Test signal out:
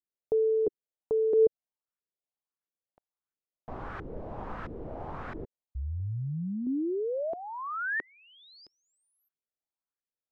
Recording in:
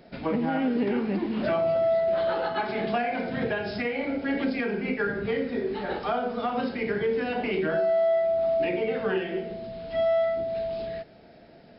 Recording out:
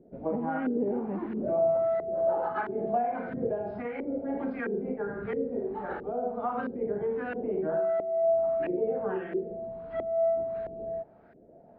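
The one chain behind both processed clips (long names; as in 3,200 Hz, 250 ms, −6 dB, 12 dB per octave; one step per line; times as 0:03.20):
auto-filter low-pass saw up 1.5 Hz 360–1,600 Hz
level −6.5 dB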